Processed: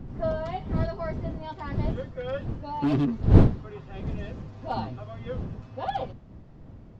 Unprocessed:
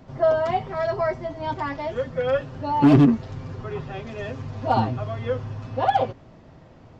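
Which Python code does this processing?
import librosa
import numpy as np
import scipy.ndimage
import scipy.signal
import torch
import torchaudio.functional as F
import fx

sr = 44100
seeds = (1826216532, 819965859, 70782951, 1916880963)

y = fx.dmg_wind(x, sr, seeds[0], corner_hz=160.0, level_db=-18.0)
y = fx.dynamic_eq(y, sr, hz=3900.0, q=2.0, threshold_db=-49.0, ratio=4.0, max_db=5)
y = y * 10.0 ** (-10.0 / 20.0)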